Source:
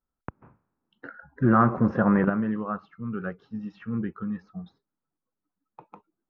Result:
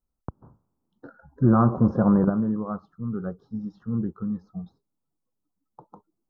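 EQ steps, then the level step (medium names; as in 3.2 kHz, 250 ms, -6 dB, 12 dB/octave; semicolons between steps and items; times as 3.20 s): Butterworth band-stop 2.3 kHz, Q 0.65; bass shelf 140 Hz +7.5 dB; 0.0 dB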